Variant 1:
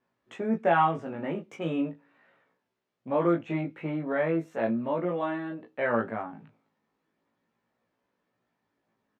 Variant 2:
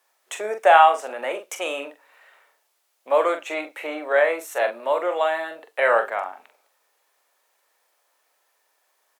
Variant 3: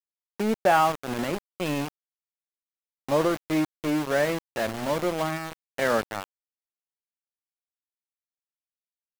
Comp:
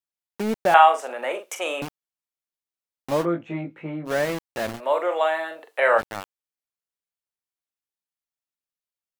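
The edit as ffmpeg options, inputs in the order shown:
-filter_complex "[1:a]asplit=2[a][b];[2:a]asplit=4[c][d][e][f];[c]atrim=end=0.742[g];[a]atrim=start=0.738:end=1.822[h];[d]atrim=start=1.818:end=3.26[i];[0:a]atrim=start=3.2:end=4.11[j];[e]atrim=start=4.05:end=4.81[k];[b]atrim=start=4.75:end=6.03[l];[f]atrim=start=5.97[m];[g][h]acrossfade=d=0.004:c1=hsin:c2=hsin[n];[n][i]acrossfade=d=0.004:c1=hsin:c2=hsin[o];[o][j]acrossfade=d=0.06:c1=tri:c2=tri[p];[p][k]acrossfade=d=0.06:c1=tri:c2=tri[q];[q][l]acrossfade=d=0.06:c1=tri:c2=tri[r];[r][m]acrossfade=d=0.06:c1=tri:c2=tri"

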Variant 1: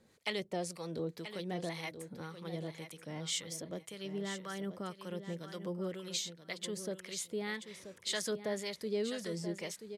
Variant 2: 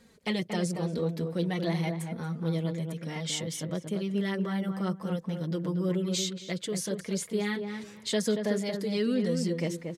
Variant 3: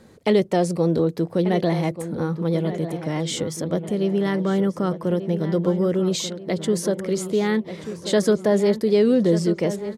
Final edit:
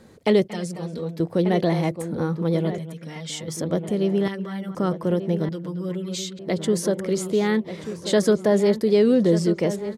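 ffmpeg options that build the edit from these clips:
-filter_complex "[1:a]asplit=4[a][b][c][d];[2:a]asplit=5[e][f][g][h][i];[e]atrim=end=0.482[j];[a]atrim=start=0.478:end=1.202[k];[f]atrim=start=1.198:end=2.782[l];[b]atrim=start=2.778:end=3.482[m];[g]atrim=start=3.478:end=4.282[n];[c]atrim=start=4.278:end=4.752[o];[h]atrim=start=4.748:end=5.492[p];[d]atrim=start=5.488:end=6.392[q];[i]atrim=start=6.388[r];[j][k]acrossfade=d=0.004:c1=hsin:c2=hsin[s];[s][l]acrossfade=d=0.004:c1=hsin:c2=hsin[t];[t][m]acrossfade=d=0.004:c1=hsin:c2=hsin[u];[u][n]acrossfade=d=0.004:c1=hsin:c2=hsin[v];[v][o]acrossfade=d=0.004:c1=hsin:c2=hsin[w];[w][p]acrossfade=d=0.004:c1=hsin:c2=hsin[x];[x][q]acrossfade=d=0.004:c1=hsin:c2=hsin[y];[y][r]acrossfade=d=0.004:c1=hsin:c2=hsin"

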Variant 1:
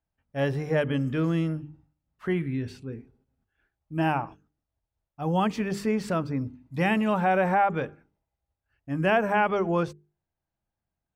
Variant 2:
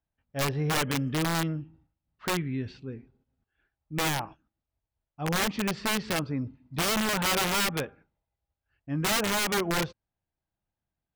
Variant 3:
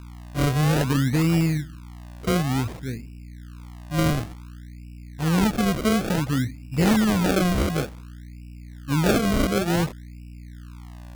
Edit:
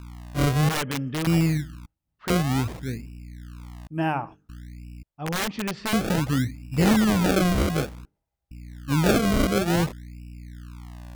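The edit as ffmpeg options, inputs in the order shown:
-filter_complex "[1:a]asplit=3[a][b][c];[0:a]asplit=2[d][e];[2:a]asplit=6[f][g][h][i][j][k];[f]atrim=end=0.692[l];[a]atrim=start=0.688:end=1.272[m];[g]atrim=start=1.268:end=1.862[n];[b]atrim=start=1.858:end=2.302[o];[h]atrim=start=2.298:end=3.872[p];[d]atrim=start=3.868:end=4.492[q];[i]atrim=start=4.488:end=5.032[r];[c]atrim=start=5.028:end=5.932[s];[j]atrim=start=5.928:end=8.052[t];[e]atrim=start=8.048:end=8.512[u];[k]atrim=start=8.508[v];[l][m]acrossfade=d=0.004:c1=hsin:c2=hsin[w];[w][n]acrossfade=d=0.004:c1=hsin:c2=hsin[x];[x][o]acrossfade=d=0.004:c1=hsin:c2=hsin[y];[y][p]acrossfade=d=0.004:c1=hsin:c2=hsin[z];[z][q]acrossfade=d=0.004:c1=hsin:c2=hsin[aa];[aa][r]acrossfade=d=0.004:c1=hsin:c2=hsin[ab];[ab][s]acrossfade=d=0.004:c1=hsin:c2=hsin[ac];[ac][t]acrossfade=d=0.004:c1=hsin:c2=hsin[ad];[ad][u]acrossfade=d=0.004:c1=hsin:c2=hsin[ae];[ae][v]acrossfade=d=0.004:c1=hsin:c2=hsin"

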